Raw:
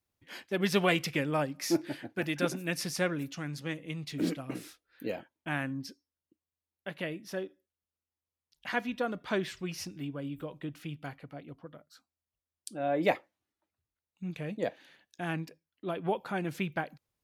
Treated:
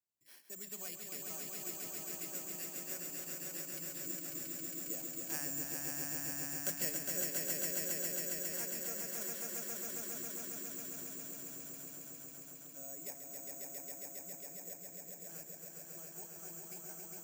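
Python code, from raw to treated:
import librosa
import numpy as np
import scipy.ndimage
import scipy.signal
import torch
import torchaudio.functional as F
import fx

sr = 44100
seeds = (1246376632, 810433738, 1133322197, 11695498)

p1 = fx.doppler_pass(x, sr, speed_mps=11, closest_m=2.2, pass_at_s=6.34)
p2 = scipy.signal.sosfilt(scipy.signal.butter(2, 95.0, 'highpass', fs=sr, output='sos'), p1)
p3 = fx.high_shelf(p2, sr, hz=5600.0, db=8.5)
p4 = fx.hum_notches(p3, sr, base_hz=50, count=6)
p5 = fx.level_steps(p4, sr, step_db=23)
p6 = p4 + F.gain(torch.from_numpy(p5), -1.5).numpy()
p7 = 10.0 ** (-29.5 / 20.0) * np.tanh(p6 / 10.0 ** (-29.5 / 20.0))
p8 = (np.kron(scipy.signal.resample_poly(p7, 1, 6), np.eye(6)[0]) * 6)[:len(p7)]
p9 = fx.echo_swell(p8, sr, ms=136, loudest=5, wet_db=-4.0)
p10 = fx.band_squash(p9, sr, depth_pct=40)
y = F.gain(torch.from_numpy(p10), -1.0).numpy()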